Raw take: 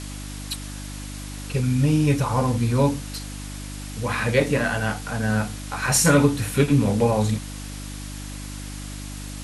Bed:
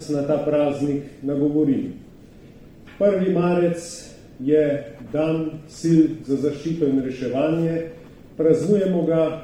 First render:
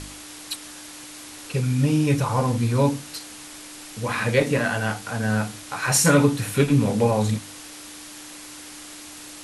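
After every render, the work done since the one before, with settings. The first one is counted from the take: de-hum 50 Hz, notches 5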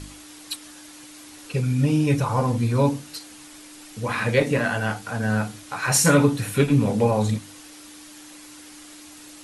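denoiser 6 dB, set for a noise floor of -41 dBFS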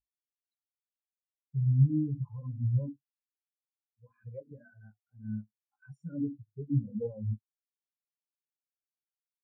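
limiter -14 dBFS, peak gain reduction 8 dB; spectral expander 4:1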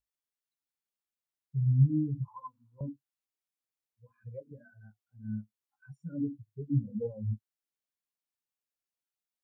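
2.28–2.81 resonant high-pass 1000 Hz, resonance Q 12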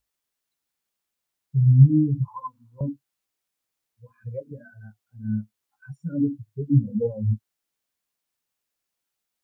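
gain +10 dB

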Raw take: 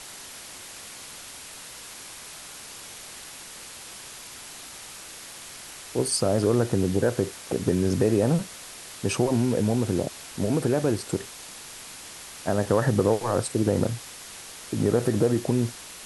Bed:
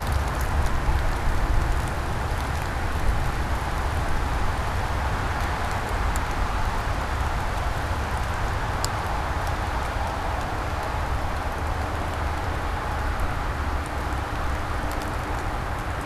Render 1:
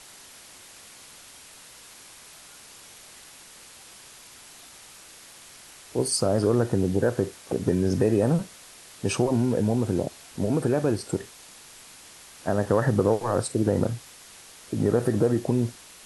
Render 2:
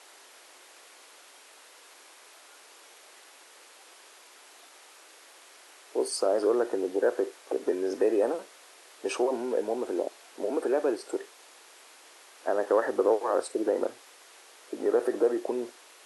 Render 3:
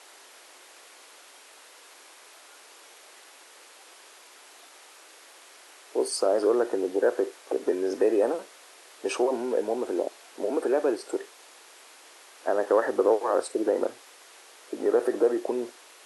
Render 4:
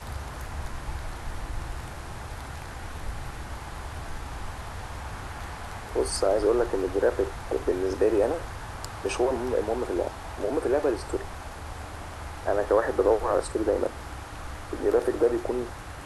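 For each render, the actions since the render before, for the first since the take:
noise print and reduce 6 dB
inverse Chebyshev high-pass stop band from 170 Hz, stop band 40 dB; high shelf 3000 Hz -9 dB
gain +2 dB
add bed -11.5 dB

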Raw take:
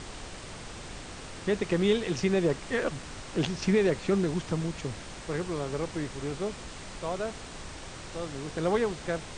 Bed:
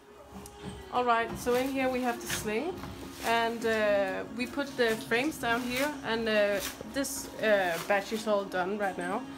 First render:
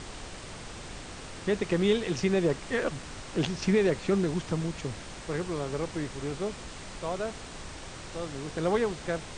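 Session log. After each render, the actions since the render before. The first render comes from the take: nothing audible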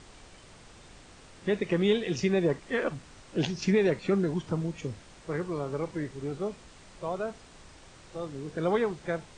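noise print and reduce 10 dB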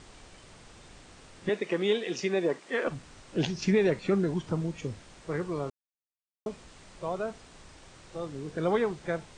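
1.49–2.87 HPF 290 Hz; 5.7–6.46 mute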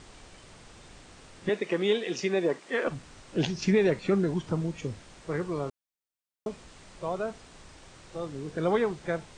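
gain +1 dB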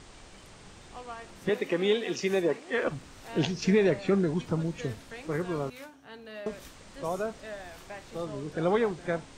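add bed -16 dB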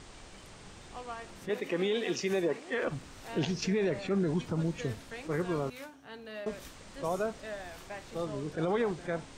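limiter -21.5 dBFS, peak gain reduction 8 dB; attack slew limiter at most 330 dB/s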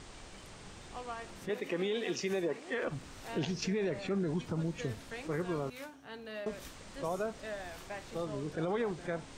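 compressor 1.5:1, threshold -36 dBFS, peak gain reduction 4 dB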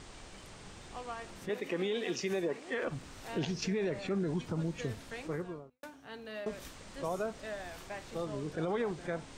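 5.16–5.83 studio fade out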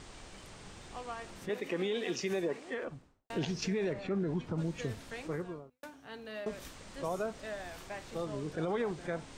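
2.53–3.3 studio fade out; 3.93–4.58 LPF 2400 Hz 6 dB/oct

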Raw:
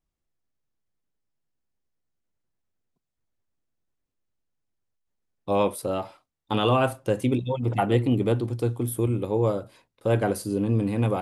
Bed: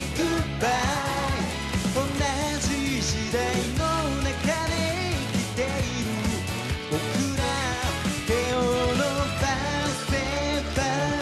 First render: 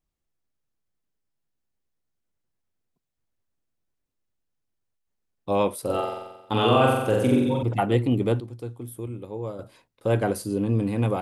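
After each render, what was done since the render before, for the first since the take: 5.81–7.63 flutter echo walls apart 7.7 m, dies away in 1 s; 8.4–9.59 gain -9.5 dB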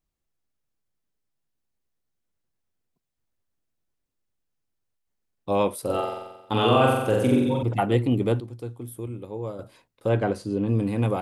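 10.09–10.68 air absorption 90 m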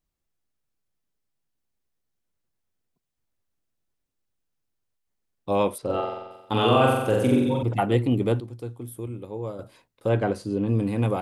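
5.78–6.31 air absorption 130 m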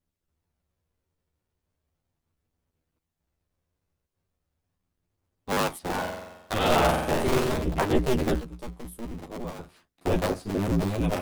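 cycle switcher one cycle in 2, inverted; chorus voices 2, 0.19 Hz, delay 12 ms, depth 1.1 ms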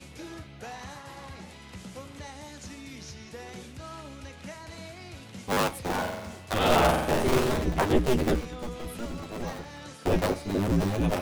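add bed -17 dB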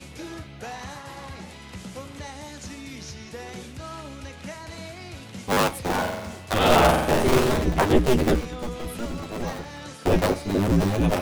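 gain +4.5 dB

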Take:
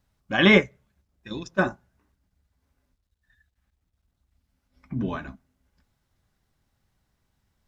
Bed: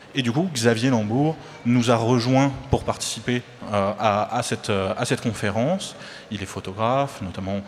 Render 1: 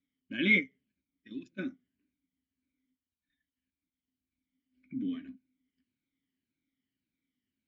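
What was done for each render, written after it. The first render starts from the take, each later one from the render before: moving spectral ripple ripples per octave 1.4, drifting -1.8 Hz, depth 10 dB; vowel filter i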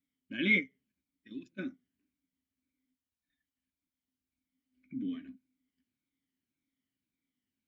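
gain -2 dB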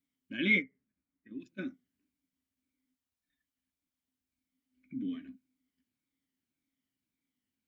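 0.62–1.4 LPF 2000 Hz 24 dB/oct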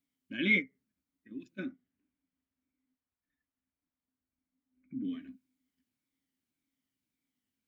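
1.65–5.03 LPF 2600 Hz -> 1400 Hz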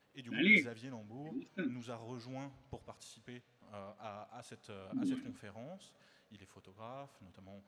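add bed -28 dB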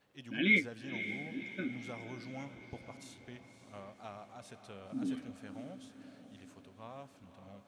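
diffused feedback echo 0.543 s, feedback 53%, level -11 dB

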